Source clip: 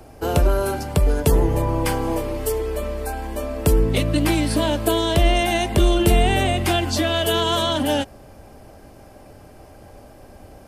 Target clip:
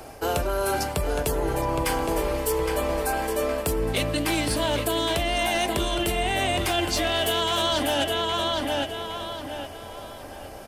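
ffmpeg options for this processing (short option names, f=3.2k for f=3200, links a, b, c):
-filter_complex "[0:a]asplit=2[a][b];[b]adelay=815,lowpass=f=4.6k:p=1,volume=-8dB,asplit=2[c][d];[d]adelay=815,lowpass=f=4.6k:p=1,volume=0.34,asplit=2[e][f];[f]adelay=815,lowpass=f=4.6k:p=1,volume=0.34,asplit=2[g][h];[h]adelay=815,lowpass=f=4.6k:p=1,volume=0.34[i];[a][c][e][g][i]amix=inputs=5:normalize=0,alimiter=limit=-10.5dB:level=0:latency=1:release=444,lowshelf=f=400:g=-9.5,bandreject=f=50:t=h:w=6,bandreject=f=100:t=h:w=6,bandreject=f=150:t=h:w=6,bandreject=f=200:t=h:w=6,bandreject=f=250:t=h:w=6,bandreject=f=300:t=h:w=6,bandreject=f=350:t=h:w=6,aeval=exprs='clip(val(0),-1,0.1)':c=same,areverse,acompressor=threshold=-29dB:ratio=6,areverse,volume=7.5dB"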